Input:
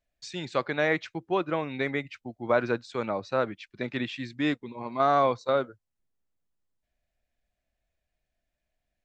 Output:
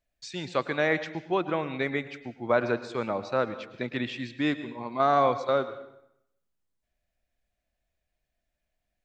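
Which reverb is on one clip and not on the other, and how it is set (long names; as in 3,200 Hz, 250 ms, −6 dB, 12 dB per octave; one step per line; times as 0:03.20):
dense smooth reverb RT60 0.77 s, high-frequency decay 0.85×, pre-delay 95 ms, DRR 12.5 dB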